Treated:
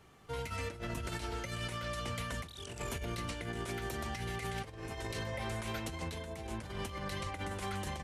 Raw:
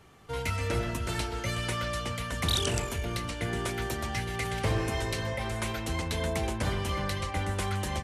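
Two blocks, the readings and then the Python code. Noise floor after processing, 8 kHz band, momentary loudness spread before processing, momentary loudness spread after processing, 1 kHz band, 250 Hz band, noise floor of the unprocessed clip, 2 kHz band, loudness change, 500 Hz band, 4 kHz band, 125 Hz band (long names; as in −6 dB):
−49 dBFS, −9.5 dB, 4 LU, 4 LU, −7.0 dB, −7.5 dB, −37 dBFS, −7.5 dB, −8.5 dB, −8.0 dB, −9.5 dB, −9.0 dB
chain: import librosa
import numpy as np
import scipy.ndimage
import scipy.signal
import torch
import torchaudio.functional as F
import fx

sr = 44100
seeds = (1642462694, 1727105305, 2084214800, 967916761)

y = fx.hum_notches(x, sr, base_hz=50, count=2)
y = fx.over_compress(y, sr, threshold_db=-33.0, ratio=-0.5)
y = F.gain(torch.from_numpy(y), -6.0).numpy()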